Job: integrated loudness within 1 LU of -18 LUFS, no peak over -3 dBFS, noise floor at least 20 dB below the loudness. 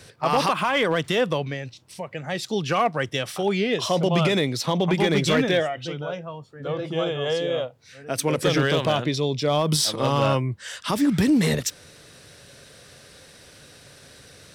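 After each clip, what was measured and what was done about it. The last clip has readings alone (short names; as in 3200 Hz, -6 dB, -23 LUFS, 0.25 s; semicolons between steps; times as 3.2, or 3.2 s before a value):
clipped 0.4%; flat tops at -13.0 dBFS; loudness -23.5 LUFS; peak -13.0 dBFS; loudness target -18.0 LUFS
-> clip repair -13 dBFS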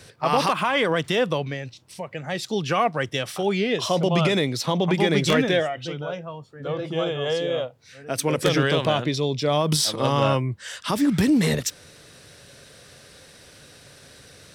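clipped 0.0%; loudness -23.0 LUFS; peak -4.0 dBFS; loudness target -18.0 LUFS
-> gain +5 dB; limiter -3 dBFS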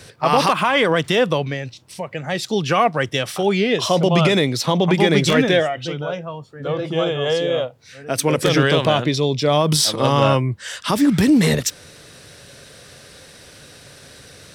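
loudness -18.0 LUFS; peak -3.0 dBFS; noise floor -45 dBFS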